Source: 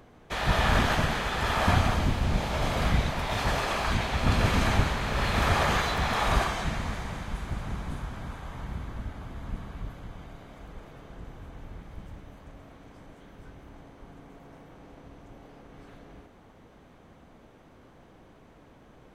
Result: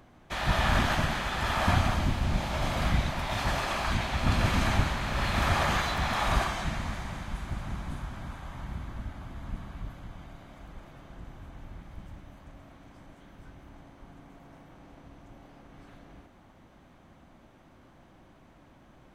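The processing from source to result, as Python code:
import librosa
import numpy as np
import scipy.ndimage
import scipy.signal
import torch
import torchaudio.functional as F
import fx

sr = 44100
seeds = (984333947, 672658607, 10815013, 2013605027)

y = fx.peak_eq(x, sr, hz=450.0, db=-11.5, octaves=0.23)
y = F.gain(torch.from_numpy(y), -1.5).numpy()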